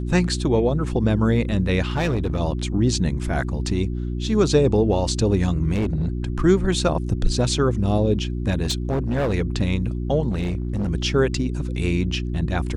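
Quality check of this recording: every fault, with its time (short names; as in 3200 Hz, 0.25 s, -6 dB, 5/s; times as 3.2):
hum 60 Hz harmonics 6 -26 dBFS
1.85–2.41 clipped -17.5 dBFS
5.72–6.09 clipped -18 dBFS
8.62–9.34 clipped -18 dBFS
10.3–10.9 clipped -20 dBFS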